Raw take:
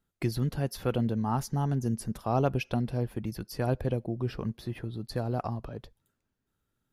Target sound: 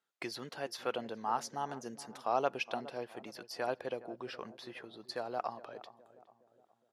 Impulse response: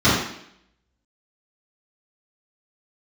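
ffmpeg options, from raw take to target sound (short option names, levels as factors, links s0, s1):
-filter_complex "[0:a]highpass=600,lowpass=7100,asplit=2[s0][s1];[s1]adelay=415,lowpass=f=940:p=1,volume=0.178,asplit=2[s2][s3];[s3]adelay=415,lowpass=f=940:p=1,volume=0.51,asplit=2[s4][s5];[s5]adelay=415,lowpass=f=940:p=1,volume=0.51,asplit=2[s6][s7];[s7]adelay=415,lowpass=f=940:p=1,volume=0.51,asplit=2[s8][s9];[s9]adelay=415,lowpass=f=940:p=1,volume=0.51[s10];[s0][s2][s4][s6][s8][s10]amix=inputs=6:normalize=0"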